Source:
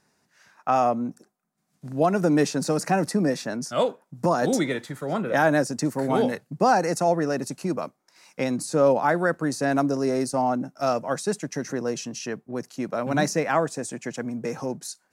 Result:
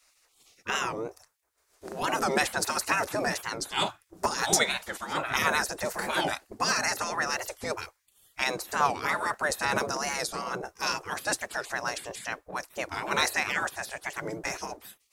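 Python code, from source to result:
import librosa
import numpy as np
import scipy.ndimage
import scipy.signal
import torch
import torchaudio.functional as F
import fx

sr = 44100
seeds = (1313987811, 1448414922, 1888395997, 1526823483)

y = fx.low_shelf(x, sr, hz=320.0, db=9.5)
y = fx.spec_gate(y, sr, threshold_db=-20, keep='weak')
y = fx.record_warp(y, sr, rpm=45.0, depth_cents=160.0)
y = y * 10.0 ** (8.5 / 20.0)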